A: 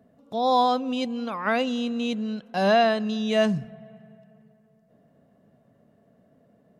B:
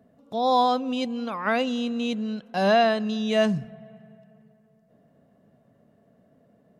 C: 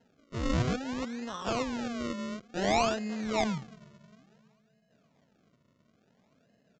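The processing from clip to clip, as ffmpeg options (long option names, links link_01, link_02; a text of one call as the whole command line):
ffmpeg -i in.wav -af anull out.wav
ffmpeg -i in.wav -af "acrusher=samples=37:mix=1:aa=0.000001:lfo=1:lforange=37:lforate=0.57,aresample=16000,aresample=44100,volume=-7.5dB" out.wav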